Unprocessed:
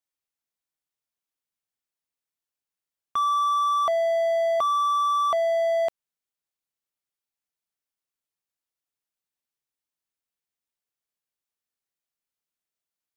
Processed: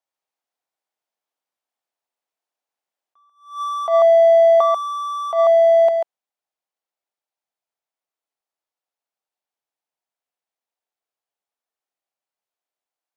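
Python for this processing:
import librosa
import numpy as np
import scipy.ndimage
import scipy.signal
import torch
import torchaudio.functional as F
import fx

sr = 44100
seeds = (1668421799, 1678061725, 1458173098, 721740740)

p1 = fx.high_shelf(x, sr, hz=7200.0, db=-8.0)
p2 = p1 + fx.echo_single(p1, sr, ms=141, db=-4.5, dry=0)
p3 = fx.rider(p2, sr, range_db=10, speed_s=2.0)
p4 = scipy.signal.sosfilt(scipy.signal.butter(2, 270.0, 'highpass', fs=sr, output='sos'), p3)
p5 = fx.peak_eq(p4, sr, hz=730.0, db=10.0, octaves=1.1)
y = fx.attack_slew(p5, sr, db_per_s=140.0)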